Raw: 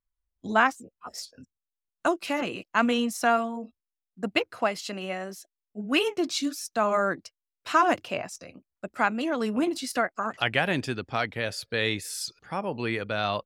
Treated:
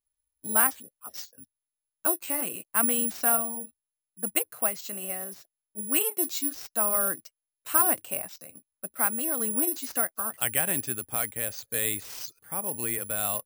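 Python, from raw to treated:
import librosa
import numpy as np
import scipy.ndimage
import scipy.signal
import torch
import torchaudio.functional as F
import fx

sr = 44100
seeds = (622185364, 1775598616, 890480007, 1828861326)

y = fx.high_shelf(x, sr, hz=10000.0, db=fx.steps((0.0, 3.0), (1.22, -11.5)))
y = (np.kron(y[::4], np.eye(4)[0]) * 4)[:len(y)]
y = F.gain(torch.from_numpy(y), -7.0).numpy()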